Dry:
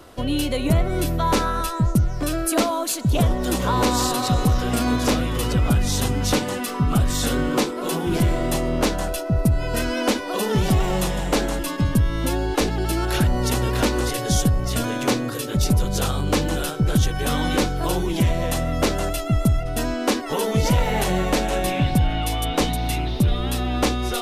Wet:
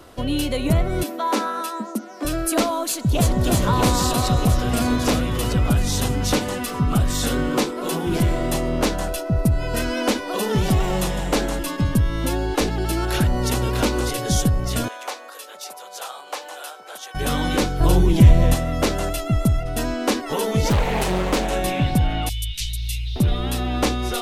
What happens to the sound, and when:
0:01.03–0:02.25: Chebyshev high-pass with heavy ripple 210 Hz, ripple 3 dB
0:02.89–0:03.38: delay throw 320 ms, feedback 80%, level −3 dB
0:13.55–0:14.23: notch filter 1,800 Hz
0:14.88–0:17.15: four-pole ladder high-pass 590 Hz, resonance 35%
0:17.80–0:18.55: low-shelf EQ 240 Hz +11.5 dB
0:20.69–0:21.48: highs frequency-modulated by the lows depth 0.61 ms
0:22.29–0:23.16: inverse Chebyshev band-stop filter 360–800 Hz, stop band 80 dB

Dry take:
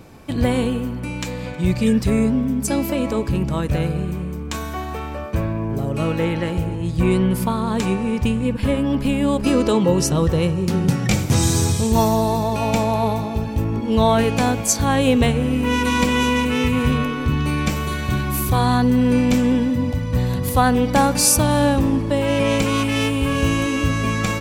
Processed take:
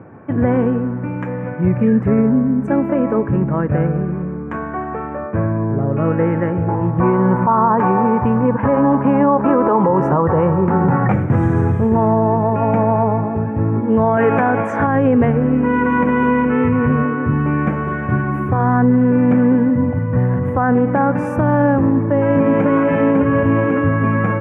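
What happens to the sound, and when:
0:06.68–0:11.12: parametric band 930 Hz +14.5 dB 1.2 octaves
0:14.17–0:14.87: mid-hump overdrive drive 16 dB, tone 5,800 Hz, clips at −4 dBFS
0:21.80–0:22.68: delay throw 550 ms, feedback 50%, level −0.5 dB
whole clip: elliptic band-pass filter 100–1,700 Hz, stop band 40 dB; brickwall limiter −11.5 dBFS; level +5.5 dB

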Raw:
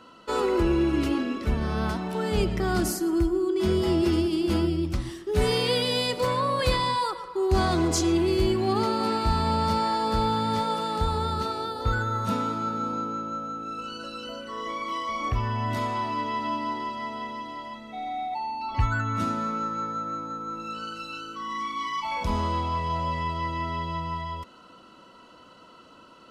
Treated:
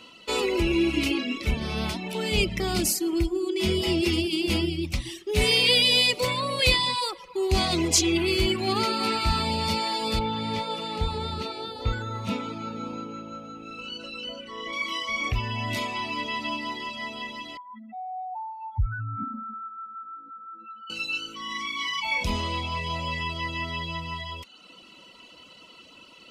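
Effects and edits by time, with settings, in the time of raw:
0:00.70–0:01.51: double-tracking delay 33 ms −8 dB
0:08.16–0:09.45: parametric band 1,400 Hz +9 dB 0.49 octaves
0:10.19–0:14.73: low-pass filter 2,300 Hz 6 dB per octave
0:17.57–0:20.90: expanding power law on the bin magnitudes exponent 3.2
whole clip: reverb reduction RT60 0.65 s; high shelf with overshoot 1,900 Hz +7 dB, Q 3

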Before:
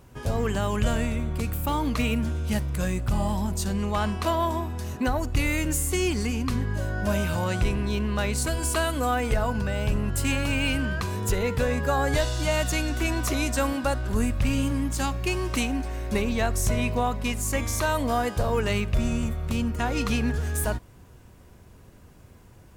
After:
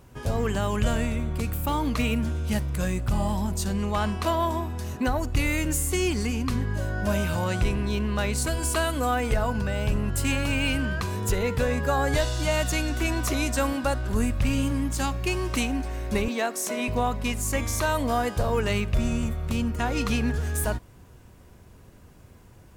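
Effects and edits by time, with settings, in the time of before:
0:16.28–0:16.88: Butterworth high-pass 230 Hz

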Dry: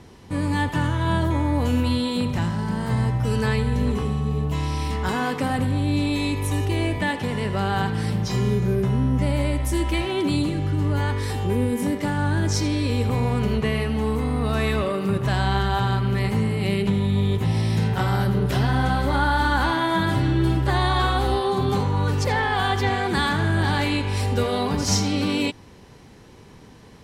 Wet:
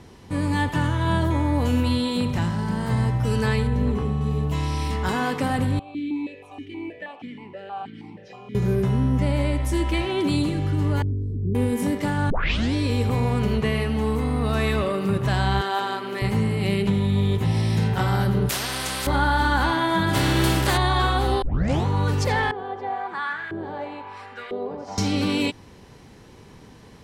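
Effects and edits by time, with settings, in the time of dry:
0:03.67–0:04.21: high-shelf EQ 2,600 Hz −10 dB
0:05.79–0:08.55: formant filter that steps through the vowels 6.3 Hz
0:09.20–0:10.21: high-shelf EQ 8,000 Hz −7 dB
0:11.02–0:11.55: inverse Chebyshev low-pass filter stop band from 680 Hz
0:12.30: tape start 0.44 s
0:15.61–0:16.22: high-pass filter 270 Hz 24 dB per octave
0:18.49–0:19.07: every bin compressed towards the loudest bin 4 to 1
0:20.13–0:20.76: compressing power law on the bin magnitudes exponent 0.6
0:21.42: tape start 0.44 s
0:22.51–0:24.98: auto-filter band-pass saw up 1 Hz 360–2,100 Hz

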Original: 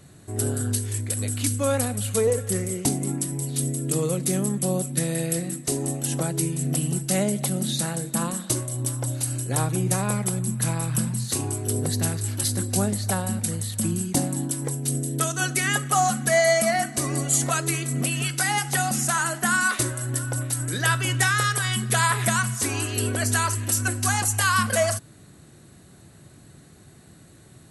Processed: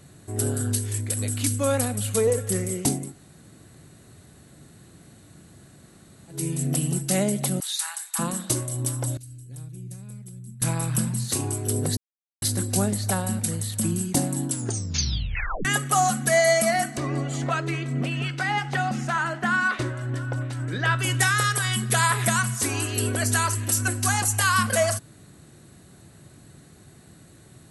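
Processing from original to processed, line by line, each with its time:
0:03.03–0:06.39: fill with room tone, crossfade 0.24 s
0:07.60–0:08.19: Butterworth high-pass 880 Hz 48 dB per octave
0:09.17–0:10.62: guitar amp tone stack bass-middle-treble 10-0-1
0:11.97–0:12.42: silence
0:14.49: tape stop 1.16 s
0:16.97–0:20.99: low-pass filter 3,000 Hz

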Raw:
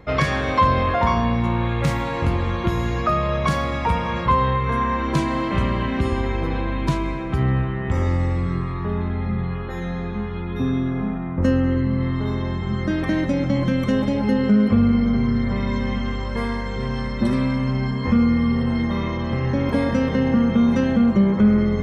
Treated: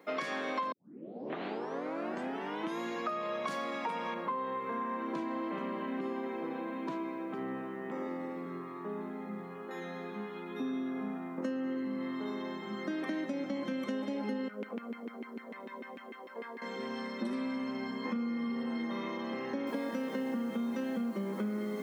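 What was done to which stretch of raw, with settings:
0:00.72: tape start 2.08 s
0:04.14–0:09.71: low-pass filter 1,300 Hz 6 dB per octave
0:14.48–0:16.62: auto-filter band-pass saw down 6.7 Hz 340–2,400 Hz
0:19.67: noise floor change −70 dB −50 dB
whole clip: Butterworth high-pass 220 Hz 36 dB per octave; downward compressor, threshold −23 dBFS; level −9 dB

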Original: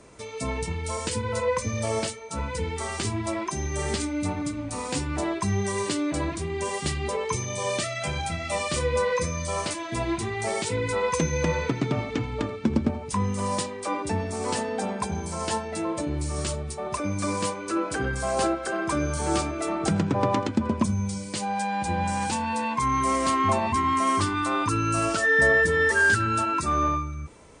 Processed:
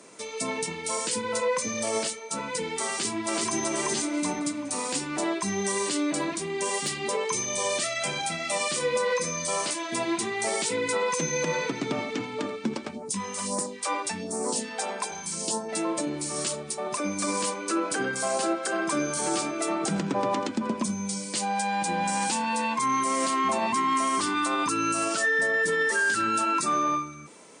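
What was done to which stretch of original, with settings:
0:02.90–0:03.63: delay throw 380 ms, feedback 30%, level 0 dB
0:06.16–0:07.05: hard clipping −18 dBFS
0:12.73–0:15.68: all-pass phaser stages 2, 2.4 Hz → 0.53 Hz, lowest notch 140–3,100 Hz
whole clip: high-pass filter 180 Hz 24 dB per octave; high-shelf EQ 3,400 Hz +7.5 dB; brickwall limiter −17.5 dBFS

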